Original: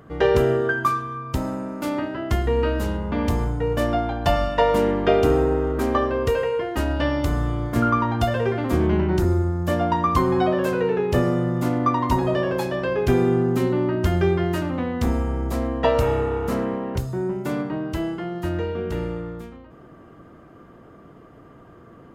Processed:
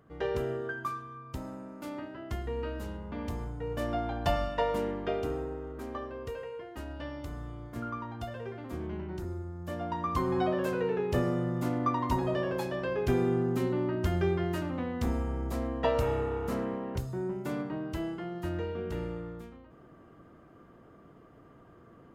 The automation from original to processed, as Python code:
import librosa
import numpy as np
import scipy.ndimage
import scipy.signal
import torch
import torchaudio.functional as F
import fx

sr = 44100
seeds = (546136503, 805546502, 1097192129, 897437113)

y = fx.gain(x, sr, db=fx.line((3.53, -14.0), (4.18, -7.5), (5.57, -17.5), (9.47, -17.5), (10.39, -8.5)))